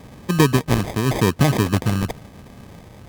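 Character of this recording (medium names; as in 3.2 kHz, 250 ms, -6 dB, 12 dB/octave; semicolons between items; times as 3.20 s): phasing stages 2, 0.89 Hz, lowest notch 490–1600 Hz; aliases and images of a low sample rate 1.4 kHz, jitter 0%; Opus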